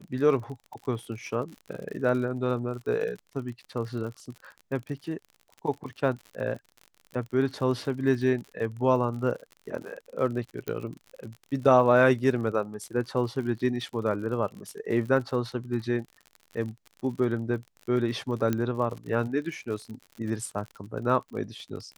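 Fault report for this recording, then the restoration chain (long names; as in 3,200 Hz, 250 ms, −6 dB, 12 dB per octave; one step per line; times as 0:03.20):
surface crackle 55 per second −36 dBFS
0:10.68: click −18 dBFS
0:18.53: click −14 dBFS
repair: click removal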